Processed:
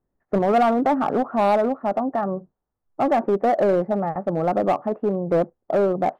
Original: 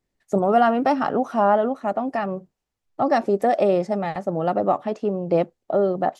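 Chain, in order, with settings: low-pass 1.4 kHz 24 dB/octave; in parallel at -7 dB: wavefolder -18 dBFS; on the sum: trim -1.5 dB

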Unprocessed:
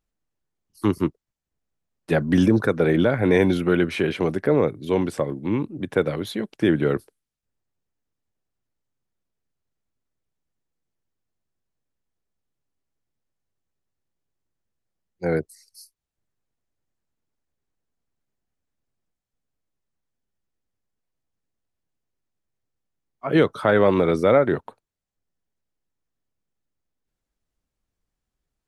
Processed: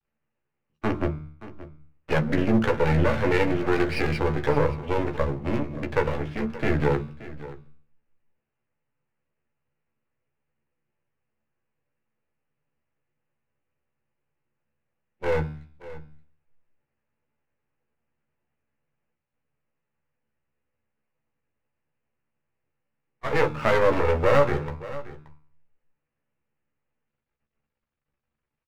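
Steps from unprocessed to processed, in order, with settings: steep low-pass 2.9 kHz 96 dB/octave; bass shelf 400 Hz -9 dB; de-hum 75.88 Hz, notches 29; in parallel at +1.5 dB: compression, threshold -31 dBFS, peak gain reduction 15 dB; on the sum: half-wave rectifier; doubling 14 ms -6 dB; delay 576 ms -16.5 dB; on a send at -9 dB: reverberation RT60 0.30 s, pre-delay 3 ms

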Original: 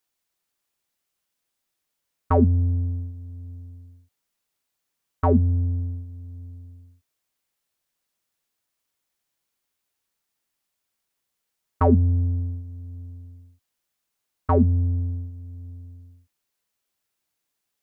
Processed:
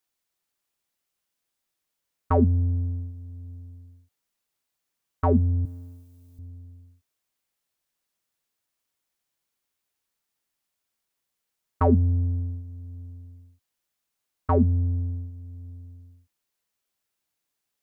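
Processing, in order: 5.65–6.39 s: tilt EQ +3.5 dB/octave; trim -2 dB

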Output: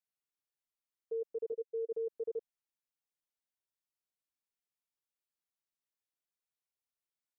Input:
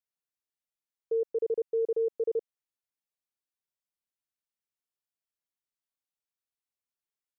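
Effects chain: peak limiter -31 dBFS, peak gain reduction 7.5 dB; level held to a coarse grid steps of 9 dB; 1.52–1.92 s: band-pass filter 460 Hz, Q 5.4; trim +1 dB

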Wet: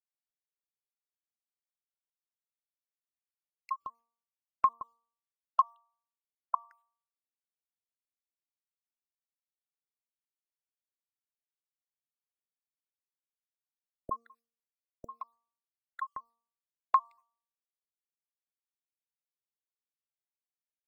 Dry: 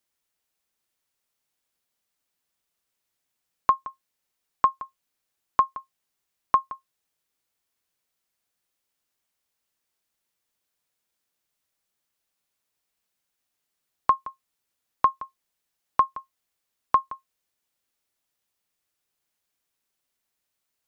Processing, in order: random holes in the spectrogram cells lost 67%; gate with hold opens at -46 dBFS; de-hum 232 Hz, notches 5; trim -4.5 dB

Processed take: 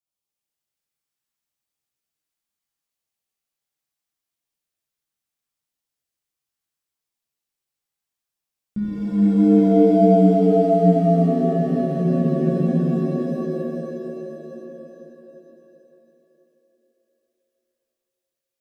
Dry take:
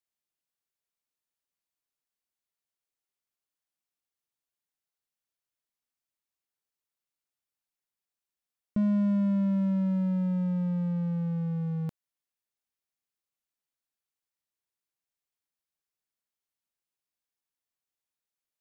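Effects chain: waveshaping leveller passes 1; LFO notch saw down 0.73 Hz 370–1900 Hz; spectral freeze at 11.55 s, 1.29 s; pitch-shifted reverb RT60 3.6 s, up +7 st, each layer -2 dB, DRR -7.5 dB; trim -2 dB

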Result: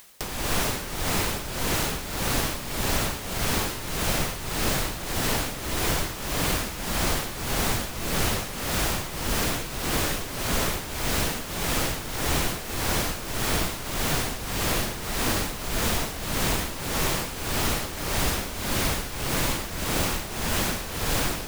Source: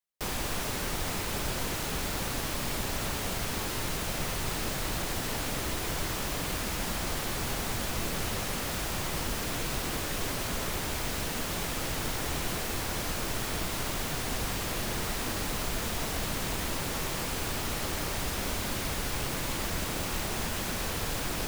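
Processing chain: tremolo 1.7 Hz, depth 76%; upward compressor, threshold -35 dBFS; trim +8.5 dB

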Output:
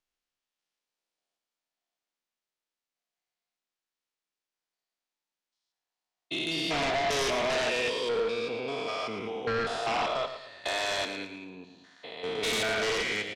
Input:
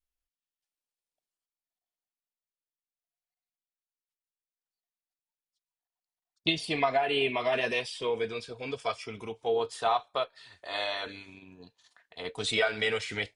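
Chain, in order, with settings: spectrogram pixelated in time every 200 ms; three-band isolator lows -13 dB, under 170 Hz, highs -16 dB, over 7.3 kHz; sine folder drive 11 dB, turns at -19 dBFS; on a send: feedback delay 112 ms, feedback 36%, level -10 dB; on the sum: trim -6.5 dB

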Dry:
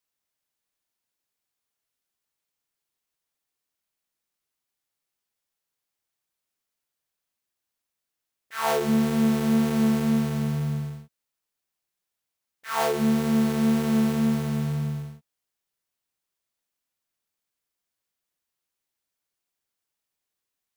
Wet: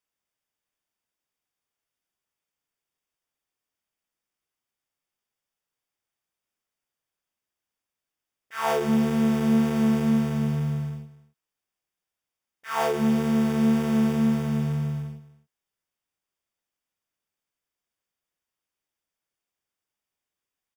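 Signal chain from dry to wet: Butterworth band-stop 4.1 kHz, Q 7.7; treble shelf 6 kHz -7 dB; delay 260 ms -17.5 dB

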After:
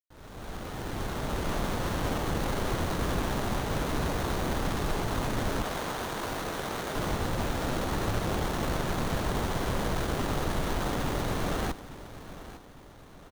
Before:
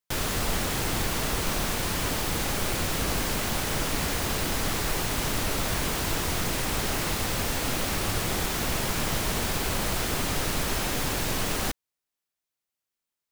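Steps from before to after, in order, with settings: fade-in on the opening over 1.67 s; 5.62–6.96 s: high-pass 480 Hz 6 dB/octave; feedback delay 855 ms, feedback 47%, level -15 dB; sliding maximum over 17 samples

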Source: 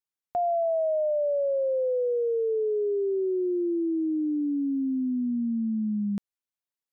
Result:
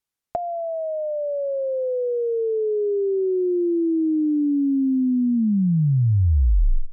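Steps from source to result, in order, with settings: tape stop on the ending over 1.58 s; low-pass that closes with the level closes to 420 Hz, closed at -28.5 dBFS; bass shelf 150 Hz +5.5 dB; trim +6.5 dB

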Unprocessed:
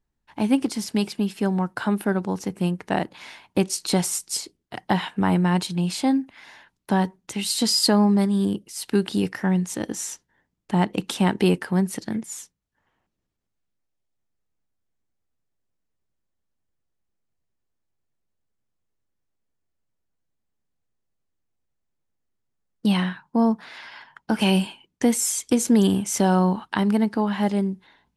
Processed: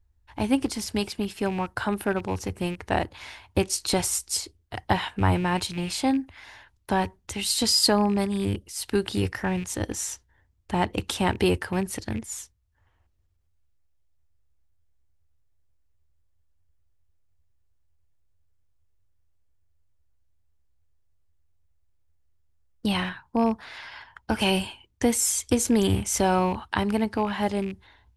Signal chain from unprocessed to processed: rattle on loud lows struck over -27 dBFS, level -31 dBFS; resonant low shelf 120 Hz +12 dB, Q 3

